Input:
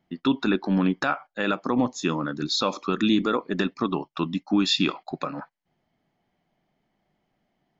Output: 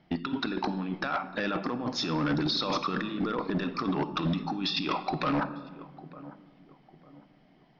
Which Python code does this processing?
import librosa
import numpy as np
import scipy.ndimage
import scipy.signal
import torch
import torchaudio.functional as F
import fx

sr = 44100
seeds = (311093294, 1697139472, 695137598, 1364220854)

y = fx.over_compress(x, sr, threshold_db=-32.0, ratio=-1.0)
y = fx.echo_filtered(y, sr, ms=901, feedback_pct=41, hz=840.0, wet_db=-18.0)
y = fx.room_shoebox(y, sr, seeds[0], volume_m3=1200.0, walls='mixed', distance_m=0.5)
y = np.clip(y, -10.0 ** (-26.0 / 20.0), 10.0 ** (-26.0 / 20.0))
y = scipy.signal.sosfilt(scipy.signal.ellip(4, 1.0, 40, 5400.0, 'lowpass', fs=sr, output='sos'), y)
y = F.gain(torch.from_numpy(y), 3.5).numpy()